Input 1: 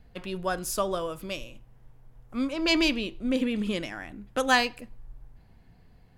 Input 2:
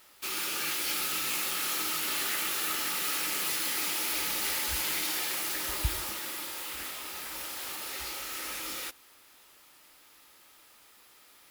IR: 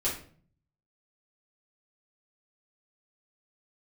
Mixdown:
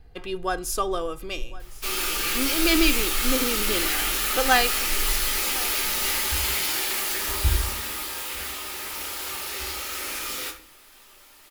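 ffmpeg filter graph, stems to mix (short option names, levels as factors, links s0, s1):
-filter_complex "[0:a]aecho=1:1:2.5:0.61,volume=1.19,asplit=2[s0][s1];[s1]volume=0.106[s2];[1:a]adelay=1600,volume=1,asplit=2[s3][s4];[s4]volume=0.668[s5];[2:a]atrim=start_sample=2205[s6];[s5][s6]afir=irnorm=-1:irlink=0[s7];[s2]aecho=0:1:1060:1[s8];[s0][s3][s7][s8]amix=inputs=4:normalize=0,asubboost=boost=4:cutoff=62"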